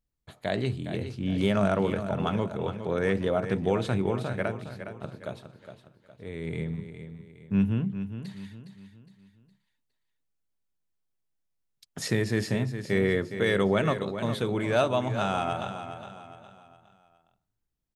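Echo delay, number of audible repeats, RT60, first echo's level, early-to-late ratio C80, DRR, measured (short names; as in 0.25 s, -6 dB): 0.412 s, 4, none, -10.0 dB, none, none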